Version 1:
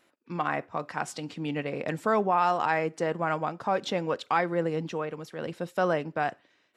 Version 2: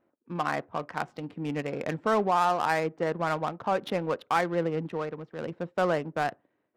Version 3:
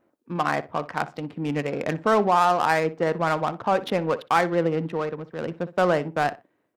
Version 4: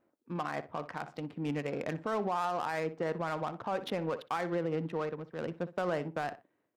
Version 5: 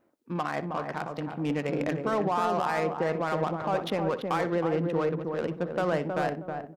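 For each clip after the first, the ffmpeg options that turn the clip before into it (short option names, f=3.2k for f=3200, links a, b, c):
-af "adynamicsmooth=sensitivity=5:basefreq=880"
-filter_complex "[0:a]asplit=2[a][b];[b]adelay=61,lowpass=f=2.9k:p=1,volume=-16dB,asplit=2[c][d];[d]adelay=61,lowpass=f=2.9k:p=1,volume=0.21[e];[a][c][e]amix=inputs=3:normalize=0,volume=5dB"
-af "alimiter=limit=-16.5dB:level=0:latency=1:release=73,volume=-7dB"
-filter_complex "[0:a]asplit=2[a][b];[b]adelay=317,lowpass=f=850:p=1,volume=-3dB,asplit=2[c][d];[d]adelay=317,lowpass=f=850:p=1,volume=0.33,asplit=2[e][f];[f]adelay=317,lowpass=f=850:p=1,volume=0.33,asplit=2[g][h];[h]adelay=317,lowpass=f=850:p=1,volume=0.33[i];[a][c][e][g][i]amix=inputs=5:normalize=0,volume=5dB"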